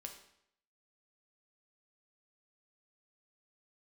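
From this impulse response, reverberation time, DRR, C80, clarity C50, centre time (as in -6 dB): 0.70 s, 3.0 dB, 11.0 dB, 8.0 dB, 19 ms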